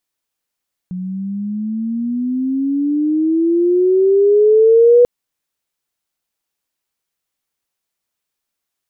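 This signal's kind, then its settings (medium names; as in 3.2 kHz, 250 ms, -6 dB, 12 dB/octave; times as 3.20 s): sweep logarithmic 180 Hz -> 490 Hz -21.5 dBFS -> -5 dBFS 4.14 s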